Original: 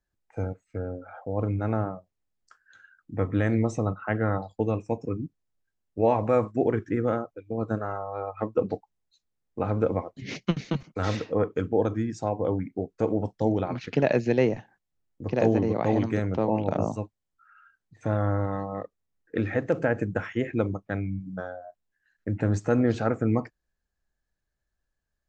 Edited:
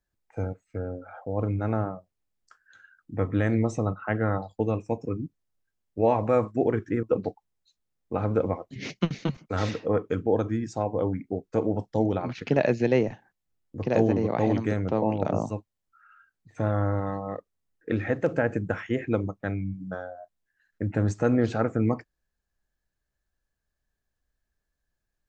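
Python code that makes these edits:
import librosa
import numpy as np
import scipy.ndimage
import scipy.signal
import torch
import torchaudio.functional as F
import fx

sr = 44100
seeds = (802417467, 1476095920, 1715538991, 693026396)

y = fx.edit(x, sr, fx.cut(start_s=7.03, length_s=1.46), tone=tone)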